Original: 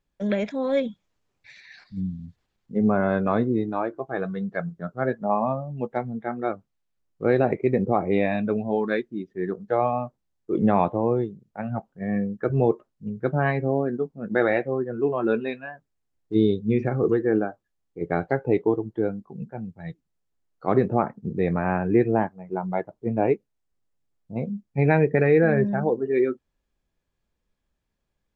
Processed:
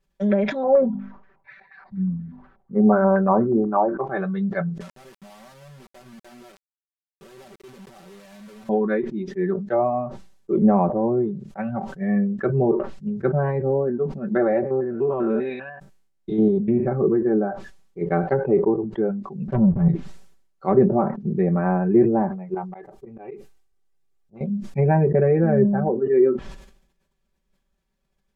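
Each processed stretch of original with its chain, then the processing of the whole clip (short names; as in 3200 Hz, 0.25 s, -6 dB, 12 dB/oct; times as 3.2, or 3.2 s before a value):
0.63–4.04 notches 50/100/150/200/250 Hz + stepped low-pass 8.3 Hz 760–1700 Hz
4.8–8.69 compressor, threshold -30 dBFS + companded quantiser 2-bit + wrapped overs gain 31.5 dB
14.61–16.86 stepped spectrum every 0.1 s + Doppler distortion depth 0.1 ms
19.48–19.88 tilt -4.5 dB/oct + sample leveller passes 2
22.54–24.41 comb 2.5 ms, depth 47% + auto swell 0.187 s + compressor 3:1, threshold -40 dBFS
whole clip: treble ducked by the level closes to 930 Hz, closed at -18.5 dBFS; comb 5.2 ms, depth 86%; sustainer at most 81 dB/s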